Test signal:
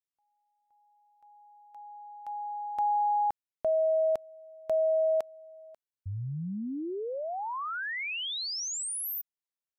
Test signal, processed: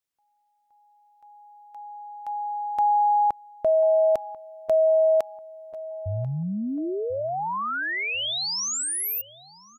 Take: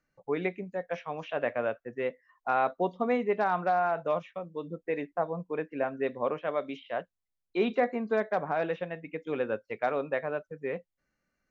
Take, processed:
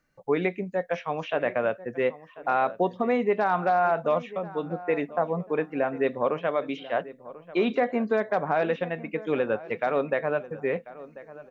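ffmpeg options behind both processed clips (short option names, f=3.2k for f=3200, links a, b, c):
-filter_complex "[0:a]alimiter=limit=-20.5dB:level=0:latency=1:release=122,asplit=2[a][b];[b]adelay=1041,lowpass=f=2.2k:p=1,volume=-17dB,asplit=2[c][d];[d]adelay=1041,lowpass=f=2.2k:p=1,volume=0.37,asplit=2[e][f];[f]adelay=1041,lowpass=f=2.2k:p=1,volume=0.37[g];[a][c][e][g]amix=inputs=4:normalize=0,volume=6.5dB"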